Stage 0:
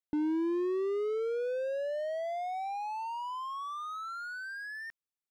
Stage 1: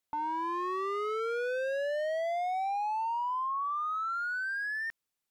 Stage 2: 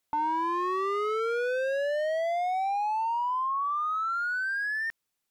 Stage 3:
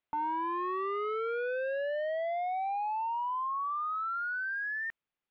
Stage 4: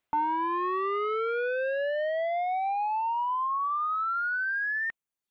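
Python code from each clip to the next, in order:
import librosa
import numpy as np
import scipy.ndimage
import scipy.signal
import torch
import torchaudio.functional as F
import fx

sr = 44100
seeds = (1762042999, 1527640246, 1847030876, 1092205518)

y1 = fx.fold_sine(x, sr, drive_db=9, ceiling_db=-24.5)
y1 = y1 * librosa.db_to_amplitude(-5.0)
y2 = fx.rider(y1, sr, range_db=10, speed_s=0.5)
y2 = y2 * librosa.db_to_amplitude(4.0)
y3 = scipy.signal.sosfilt(scipy.signal.butter(4, 3200.0, 'lowpass', fs=sr, output='sos'), y2)
y3 = y3 * librosa.db_to_amplitude(-4.5)
y4 = fx.dereverb_blind(y3, sr, rt60_s=0.81)
y4 = y4 * librosa.db_to_amplitude(6.5)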